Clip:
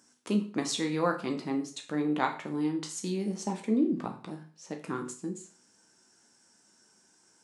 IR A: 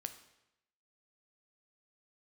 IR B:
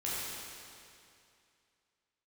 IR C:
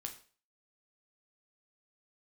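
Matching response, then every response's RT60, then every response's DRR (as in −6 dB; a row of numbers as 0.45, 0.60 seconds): C; 0.85, 2.5, 0.40 seconds; 8.5, −8.5, 3.5 decibels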